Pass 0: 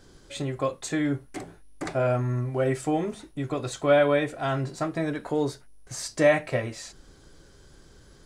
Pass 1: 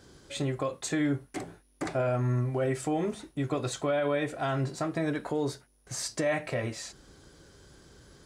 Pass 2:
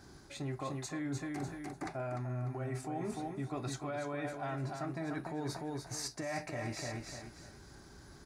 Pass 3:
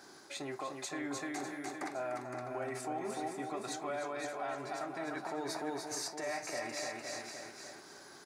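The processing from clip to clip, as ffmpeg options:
ffmpeg -i in.wav -af "highpass=54,alimiter=limit=-20dB:level=0:latency=1:release=94" out.wav
ffmpeg -i in.wav -af "equalizer=frequency=500:width_type=o:width=0.33:gain=-11,equalizer=frequency=800:width_type=o:width=0.33:gain=5,equalizer=frequency=3150:width_type=o:width=0.33:gain=-10,equalizer=frequency=8000:width_type=o:width=0.33:gain=-6,aecho=1:1:298|596|894|1192:0.447|0.138|0.0429|0.0133,areverse,acompressor=threshold=-36dB:ratio=6,areverse" out.wav
ffmpeg -i in.wav -af "highpass=390,alimiter=level_in=10dB:limit=-24dB:level=0:latency=1:release=232,volume=-10dB,aecho=1:1:515:0.473,volume=4.5dB" out.wav

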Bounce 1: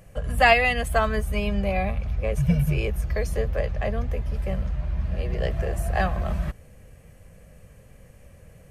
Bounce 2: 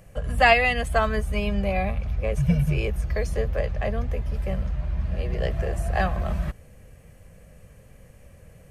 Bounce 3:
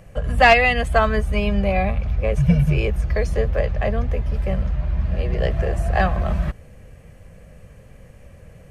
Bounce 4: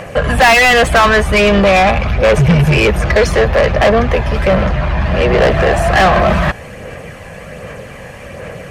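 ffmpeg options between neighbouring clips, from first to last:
ffmpeg -i in.wav -filter_complex "[0:a]acrossover=split=10000[link_01][link_02];[link_02]acompressor=threshold=-58dB:ratio=4:attack=1:release=60[link_03];[link_01][link_03]amix=inputs=2:normalize=0" out.wav
ffmpeg -i in.wav -af "aeval=exprs='clip(val(0),-1,0.282)':channel_layout=same,highshelf=frequency=7600:gain=-10,volume=5dB" out.wav
ffmpeg -i in.wav -filter_complex "[0:a]aphaser=in_gain=1:out_gain=1:delay=1.2:decay=0.31:speed=1.3:type=sinusoidal,asplit=2[link_01][link_02];[link_02]highpass=frequency=720:poles=1,volume=32dB,asoftclip=type=tanh:threshold=0dB[link_03];[link_01][link_03]amix=inputs=2:normalize=0,lowpass=frequency=3200:poles=1,volume=-6dB,volume=-1dB" out.wav

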